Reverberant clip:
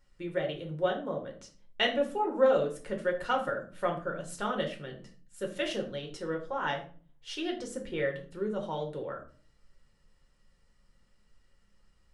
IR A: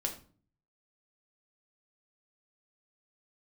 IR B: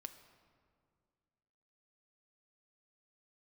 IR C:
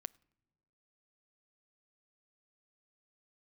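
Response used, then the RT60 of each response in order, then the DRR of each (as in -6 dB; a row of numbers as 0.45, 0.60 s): A; 0.45 s, 2.1 s, not exponential; 1.5, 7.5, 18.0 dB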